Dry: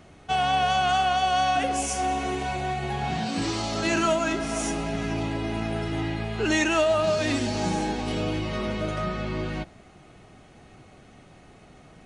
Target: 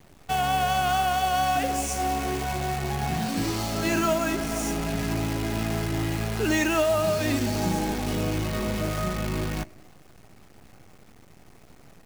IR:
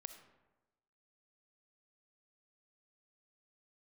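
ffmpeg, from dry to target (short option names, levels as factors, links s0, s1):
-filter_complex "[0:a]lowshelf=f=260:g=5,acrusher=bits=6:dc=4:mix=0:aa=0.000001,asplit=2[s0][s1];[s1]asuperstop=centerf=3400:order=4:qfactor=2.9[s2];[1:a]atrim=start_sample=2205[s3];[s2][s3]afir=irnorm=-1:irlink=0,volume=0.447[s4];[s0][s4]amix=inputs=2:normalize=0,volume=0.668"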